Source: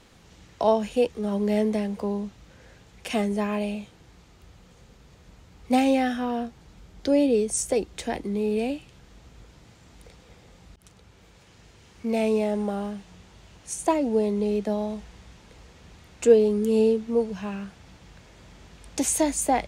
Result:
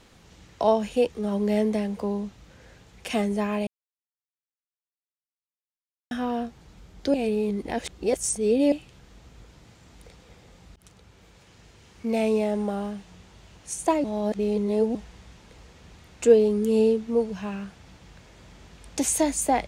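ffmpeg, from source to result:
-filter_complex "[0:a]asplit=7[a][b][c][d][e][f][g];[a]atrim=end=3.67,asetpts=PTS-STARTPTS,afade=t=out:st=3.666:d=0.004:c=hsin[h];[b]atrim=start=3.67:end=6.11,asetpts=PTS-STARTPTS,volume=0[i];[c]atrim=start=6.11:end=7.142,asetpts=PTS-STARTPTS,afade=t=in:d=0.004:c=hsin[j];[d]atrim=start=7.138:end=8.722,asetpts=PTS-STARTPTS,areverse[k];[e]atrim=start=8.718:end=14.042[l];[f]atrim=start=14.038:end=14.952,asetpts=PTS-STARTPTS,areverse[m];[g]atrim=start=14.948[n];[h][i][j]concat=n=3:v=0:a=1[o];[o][k]acrossfade=d=0.004:c1=hsin:c2=hsin[p];[p][l]acrossfade=d=0.004:c1=hsin:c2=hsin[q];[q][m]acrossfade=d=0.004:c1=hsin:c2=hsin[r];[r][n]acrossfade=d=0.004:c1=hsin:c2=hsin"

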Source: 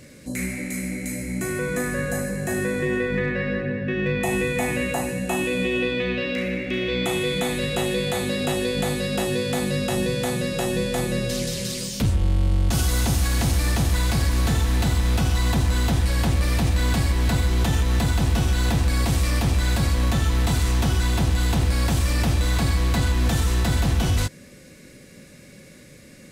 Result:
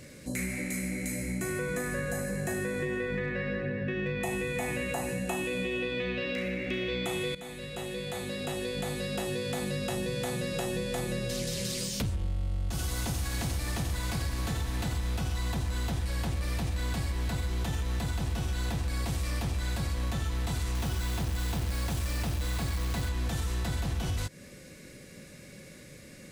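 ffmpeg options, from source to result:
-filter_complex "[0:a]asettb=1/sr,asplit=3[a][b][c];[a]atrim=end=12.164[d];[b]atrim=start=12.16:end=14.97,asetpts=PTS-STARTPTS,afade=t=in:d=0.004:c=qsin,afade=t=out:st=2.806:d=0.004:c=qsin,aecho=1:1:88:0.335,atrim=end_sample=123921[e];[c]atrim=start=14.966[f];[d][e]acrossfade=d=0.004:c1=hsin:c2=qsin[g];[g][f]acrossfade=d=0.004:c1=qsin:c2=hsin,asettb=1/sr,asplit=3[h][i][j];[h]atrim=end=20.754[k];[i]atrim=start=20.75:end=23.09,asetpts=PTS-STARTPTS,afade=t=in:d=0.004:c=qsin,afade=t=out:st=2.336:d=0.004:c=qsin,acrusher=bits=3:mode=log:mix=0:aa=0.000001[l];[j]atrim=start=23.086[m];[k][l]acrossfade=d=0.004:c1=hsin:c2=qsin[n];[n][m]acrossfade=d=0.004:c1=qsin:c2=hsin,asplit=2[o][p];[o]atrim=end=7.35,asetpts=PTS-STARTPTS,afade=t=out:st=7.346:d=0.004:c=hsin:silence=0.158489[q];[p]atrim=start=7.35,asetpts=PTS-STARTPTS,afade=t=in:d=3.27:silence=0.158489[r];[q][r]concat=n=2:v=0:a=1,equalizer=f=250:t=o:w=0.44:g=-3,acompressor=threshold=-27dB:ratio=6,volume=-2dB"

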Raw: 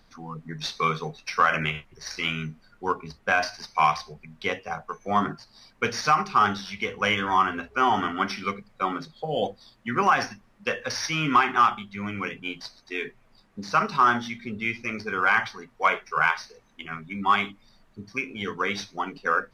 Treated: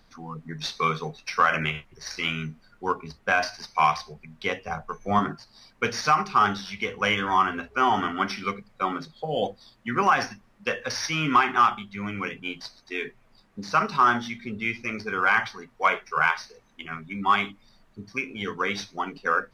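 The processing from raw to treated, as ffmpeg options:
-filter_complex "[0:a]asettb=1/sr,asplit=3[a][b][c];[a]atrim=end=4.614[d];[b]atrim=start=4.61:end=5.19,asetpts=PTS-STARTPTS,afade=t=in:d=0.004:c=qsin,afade=t=out:st=0.576:d=0.004:c=qsin,lowshelf=f=130:g=11.5[e];[c]atrim=start=5.186[f];[d][e]acrossfade=d=0.004:c1=hsin:c2=qsin[g];[g][f]acrossfade=d=0.004:c1=qsin:c2=hsin"

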